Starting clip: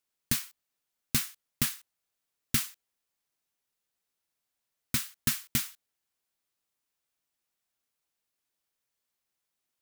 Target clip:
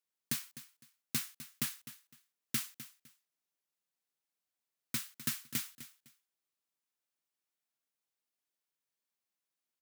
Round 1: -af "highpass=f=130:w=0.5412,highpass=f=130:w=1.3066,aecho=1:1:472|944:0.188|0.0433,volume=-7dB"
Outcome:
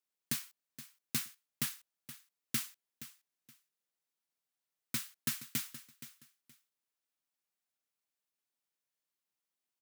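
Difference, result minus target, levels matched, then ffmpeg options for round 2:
echo 0.218 s late
-af "highpass=f=130:w=0.5412,highpass=f=130:w=1.3066,aecho=1:1:254|508:0.188|0.0433,volume=-7dB"

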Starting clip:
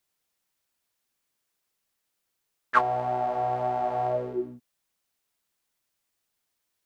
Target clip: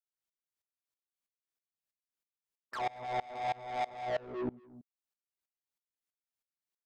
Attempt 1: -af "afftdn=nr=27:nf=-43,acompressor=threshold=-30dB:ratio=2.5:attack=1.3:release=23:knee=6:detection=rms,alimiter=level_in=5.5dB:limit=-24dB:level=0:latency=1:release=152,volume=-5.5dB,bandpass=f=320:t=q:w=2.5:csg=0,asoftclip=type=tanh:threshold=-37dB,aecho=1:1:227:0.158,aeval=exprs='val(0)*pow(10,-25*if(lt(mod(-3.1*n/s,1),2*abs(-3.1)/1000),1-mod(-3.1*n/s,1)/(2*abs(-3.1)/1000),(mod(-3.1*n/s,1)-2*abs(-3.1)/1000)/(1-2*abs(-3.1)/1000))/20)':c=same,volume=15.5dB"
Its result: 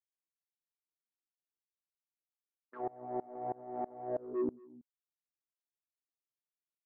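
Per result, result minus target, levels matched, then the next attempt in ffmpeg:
250 Hz band +5.0 dB; soft clip: distortion -7 dB
-af "afftdn=nr=27:nf=-43,acompressor=threshold=-30dB:ratio=2.5:attack=1.3:release=23:knee=6:detection=rms,alimiter=level_in=5.5dB:limit=-24dB:level=0:latency=1:release=152,volume=-5.5dB,asoftclip=type=tanh:threshold=-37dB,aecho=1:1:227:0.158,aeval=exprs='val(0)*pow(10,-25*if(lt(mod(-3.1*n/s,1),2*abs(-3.1)/1000),1-mod(-3.1*n/s,1)/(2*abs(-3.1)/1000),(mod(-3.1*n/s,1)-2*abs(-3.1)/1000)/(1-2*abs(-3.1)/1000))/20)':c=same,volume=15.5dB"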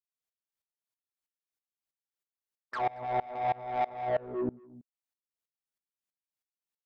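soft clip: distortion -5 dB
-af "afftdn=nr=27:nf=-43,acompressor=threshold=-30dB:ratio=2.5:attack=1.3:release=23:knee=6:detection=rms,alimiter=level_in=5.5dB:limit=-24dB:level=0:latency=1:release=152,volume=-5.5dB,asoftclip=type=tanh:threshold=-43.5dB,aecho=1:1:227:0.158,aeval=exprs='val(0)*pow(10,-25*if(lt(mod(-3.1*n/s,1),2*abs(-3.1)/1000),1-mod(-3.1*n/s,1)/(2*abs(-3.1)/1000),(mod(-3.1*n/s,1)-2*abs(-3.1)/1000)/(1-2*abs(-3.1)/1000))/20)':c=same,volume=15.5dB"

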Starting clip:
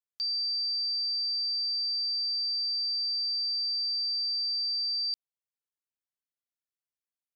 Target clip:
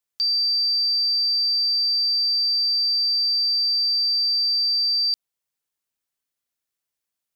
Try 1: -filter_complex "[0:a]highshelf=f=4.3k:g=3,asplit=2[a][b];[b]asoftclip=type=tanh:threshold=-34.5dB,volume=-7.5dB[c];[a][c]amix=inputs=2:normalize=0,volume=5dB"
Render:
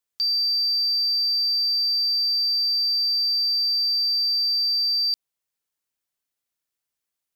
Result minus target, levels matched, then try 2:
soft clip: distortion +12 dB
-filter_complex "[0:a]highshelf=f=4.3k:g=3,asplit=2[a][b];[b]asoftclip=type=tanh:threshold=-25dB,volume=-7.5dB[c];[a][c]amix=inputs=2:normalize=0,volume=5dB"

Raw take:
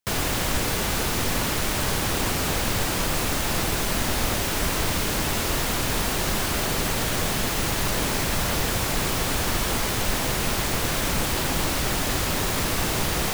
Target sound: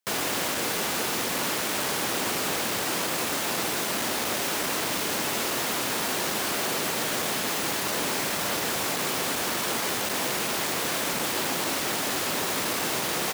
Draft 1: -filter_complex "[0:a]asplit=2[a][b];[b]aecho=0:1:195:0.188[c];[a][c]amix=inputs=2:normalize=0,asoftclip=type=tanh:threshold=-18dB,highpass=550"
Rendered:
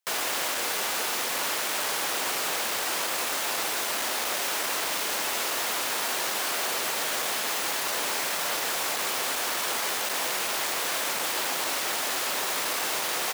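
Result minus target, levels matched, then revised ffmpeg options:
250 Hz band -9.5 dB
-filter_complex "[0:a]asplit=2[a][b];[b]aecho=0:1:195:0.188[c];[a][c]amix=inputs=2:normalize=0,asoftclip=type=tanh:threshold=-18dB,highpass=240"

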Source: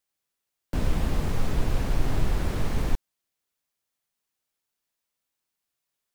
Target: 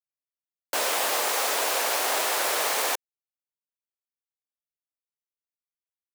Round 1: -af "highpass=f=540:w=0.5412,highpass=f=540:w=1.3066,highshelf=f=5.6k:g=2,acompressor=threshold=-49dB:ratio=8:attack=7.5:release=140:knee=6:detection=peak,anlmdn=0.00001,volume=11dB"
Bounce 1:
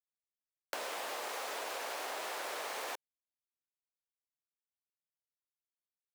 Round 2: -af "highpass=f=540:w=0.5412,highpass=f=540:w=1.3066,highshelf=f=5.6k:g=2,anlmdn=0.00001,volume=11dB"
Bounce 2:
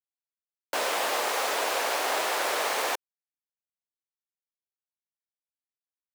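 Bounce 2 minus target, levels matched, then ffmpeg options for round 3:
8000 Hz band -3.5 dB
-af "highpass=f=540:w=0.5412,highpass=f=540:w=1.3066,highshelf=f=5.6k:g=11.5,anlmdn=0.00001,volume=11dB"

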